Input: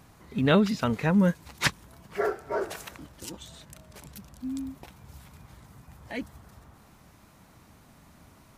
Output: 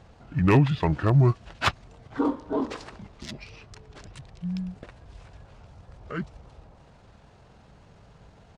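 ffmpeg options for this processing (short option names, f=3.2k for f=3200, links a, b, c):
-af "adynamicsmooth=sensitivity=3:basefreq=7.3k,aeval=exprs='0.251*(abs(mod(val(0)/0.251+3,4)-2)-1)':c=same,asetrate=30296,aresample=44100,atempo=1.45565,volume=3dB"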